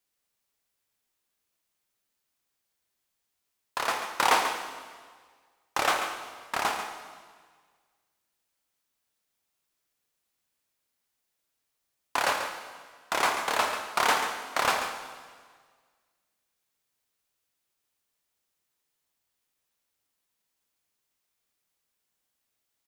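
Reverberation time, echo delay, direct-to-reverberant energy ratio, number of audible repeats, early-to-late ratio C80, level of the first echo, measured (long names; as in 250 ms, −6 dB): 1.6 s, 139 ms, 4.0 dB, 1, 6.0 dB, −9.5 dB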